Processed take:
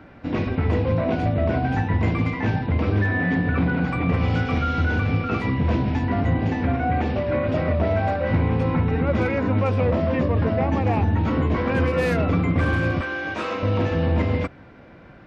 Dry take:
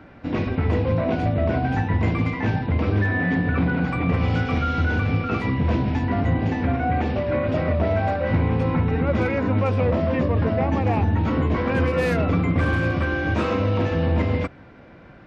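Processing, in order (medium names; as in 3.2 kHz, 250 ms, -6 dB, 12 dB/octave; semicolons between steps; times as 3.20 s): 13.01–13.63 s: high-pass 660 Hz 6 dB/octave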